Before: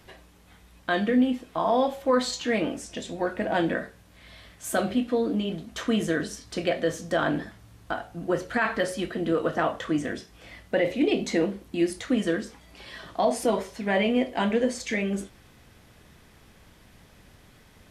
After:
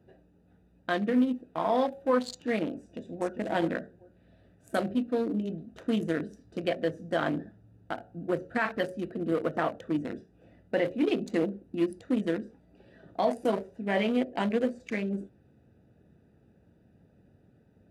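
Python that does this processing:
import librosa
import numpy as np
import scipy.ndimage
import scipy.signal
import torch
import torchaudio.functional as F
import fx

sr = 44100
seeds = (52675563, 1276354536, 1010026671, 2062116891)

y = fx.echo_throw(x, sr, start_s=2.81, length_s=0.56, ms=400, feedback_pct=15, wet_db=-6.5)
y = fx.wiener(y, sr, points=41)
y = scipy.signal.sosfilt(scipy.signal.butter(2, 99.0, 'highpass', fs=sr, output='sos'), y)
y = fx.peak_eq(y, sr, hz=11000.0, db=5.5, octaves=0.75)
y = y * librosa.db_to_amplitude(-2.5)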